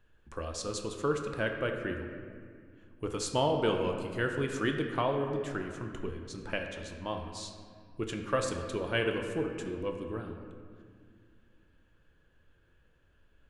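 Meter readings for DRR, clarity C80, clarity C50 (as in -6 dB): 3.0 dB, 6.0 dB, 5.0 dB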